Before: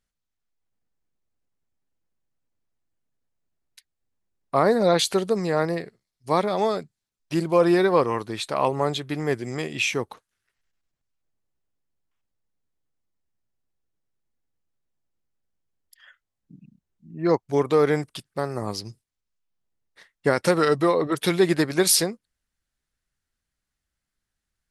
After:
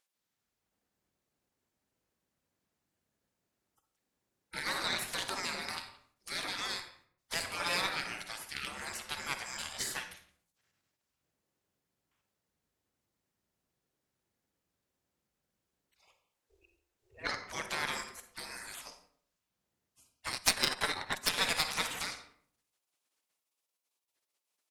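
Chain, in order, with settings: speakerphone echo 170 ms, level -20 dB; in parallel at -2 dB: peak limiter -17.5 dBFS, peak gain reduction 11.5 dB; on the sum: spectral gate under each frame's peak -25 dB weak; on a send at -7 dB: reverberation RT60 0.60 s, pre-delay 43 ms; 20.32–21.29 s: on the sum: transient shaper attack +7 dB, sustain -8 dB; Chebyshev shaper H 2 -7 dB, 8 -18 dB, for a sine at -10 dBFS

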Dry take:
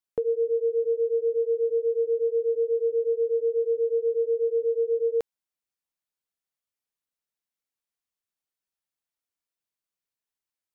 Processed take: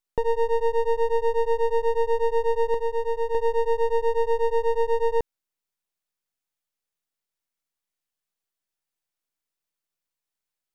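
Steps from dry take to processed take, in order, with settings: 2.74–3.35 s: bass shelf 290 Hz -11 dB; half-wave rectifier; trim +6.5 dB

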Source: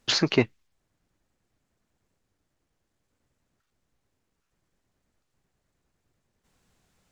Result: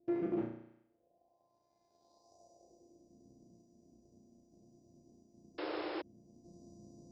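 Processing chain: sorted samples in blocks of 128 samples; elliptic band-stop 700–5100 Hz, stop band 40 dB; treble shelf 6.5 kHz +9.5 dB; in parallel at -1 dB: compressor with a negative ratio -25 dBFS; on the sum: hard clipper -25 dBFS, distortion -2 dB; low-pass sweep 340 Hz -> 6.1 kHz, 0.83–2.36 s; on a send: flutter echo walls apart 5.8 m, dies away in 0.66 s; on the sum: painted sound noise, 5.58–6.02 s, 300–5400 Hz -35 dBFS; band-pass sweep 2.5 kHz -> 240 Hz, 1.64–3.15 s; tape noise reduction on one side only encoder only; trim +15 dB

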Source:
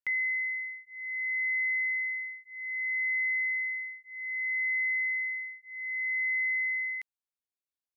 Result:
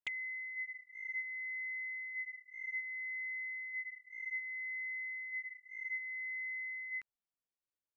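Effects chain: treble shelf 2.1 kHz -11.5 dB; touch-sensitive flanger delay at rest 9.7 ms, full sweep at -36.5 dBFS; trim +3 dB

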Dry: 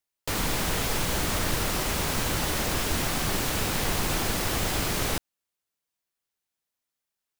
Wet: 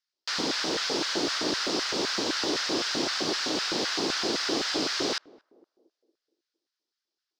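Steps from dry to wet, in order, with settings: FFT filter 430 Hz 0 dB, 2.3 kHz -6 dB, 5 kHz +8 dB, 12 kHz -28 dB; band-passed feedback delay 232 ms, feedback 49%, band-pass 400 Hz, level -22 dB; LFO high-pass square 3.9 Hz 320–1500 Hz

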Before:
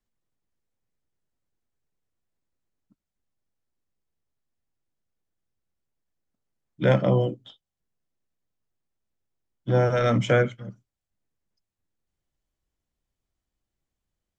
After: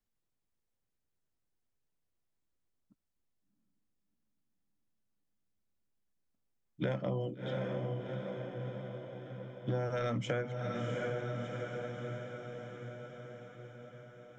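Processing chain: on a send: echo that smears into a reverb 700 ms, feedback 62%, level -10 dB; on the sum: compression 8:1, threshold -27 dBFS, peak gain reduction 12.5 dB; trim -4 dB

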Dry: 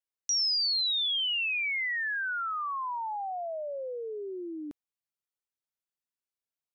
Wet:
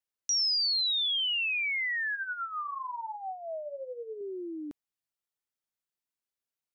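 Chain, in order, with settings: 2.15–4.21 s: flange 1 Hz, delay 8.6 ms, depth 6.9 ms, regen +21%

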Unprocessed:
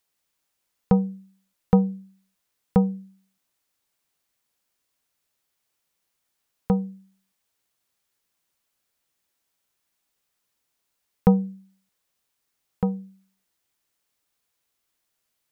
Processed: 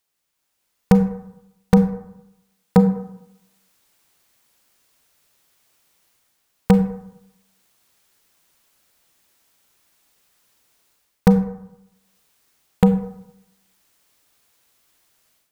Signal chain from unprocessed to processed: 1.77–2.78 s: high-pass 160 Hz 6 dB/octave; level rider gain up to 13 dB; in parallel at -11 dB: integer overflow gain 2 dB; on the sum: reverberation RT60 0.85 s, pre-delay 28 ms, DRR 9.5 dB; trim -1.5 dB

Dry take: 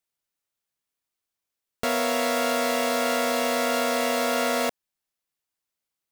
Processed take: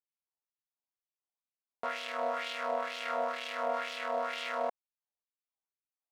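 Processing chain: local Wiener filter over 25 samples; LFO band-pass sine 2.1 Hz 780–3100 Hz

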